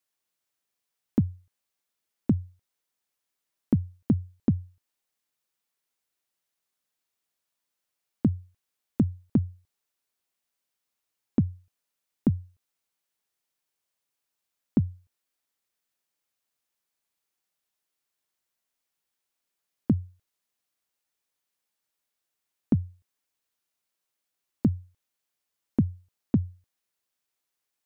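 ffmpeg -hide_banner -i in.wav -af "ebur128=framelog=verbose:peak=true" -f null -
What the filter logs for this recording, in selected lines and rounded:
Integrated loudness:
  I:         -29.4 LUFS
  Threshold: -40.5 LUFS
Loudness range:
  LRA:         4.8 LU
  Threshold: -54.7 LUFS
  LRA low:   -37.6 LUFS
  LRA high:  -32.8 LUFS
True peak:
  Peak:      -11.7 dBFS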